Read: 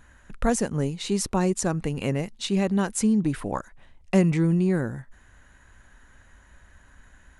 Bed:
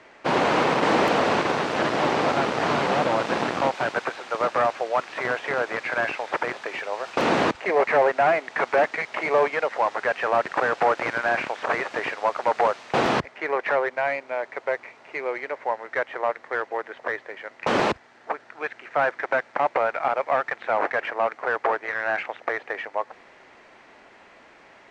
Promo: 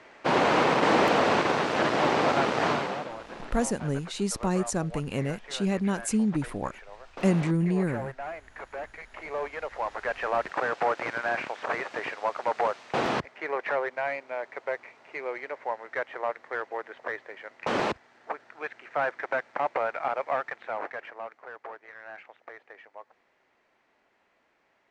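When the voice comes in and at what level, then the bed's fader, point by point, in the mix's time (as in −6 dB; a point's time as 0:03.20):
3.10 s, −3.5 dB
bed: 0:02.67 −1.5 dB
0:03.16 −17.5 dB
0:08.81 −17.5 dB
0:10.20 −5.5 dB
0:20.32 −5.5 dB
0:21.53 −18.5 dB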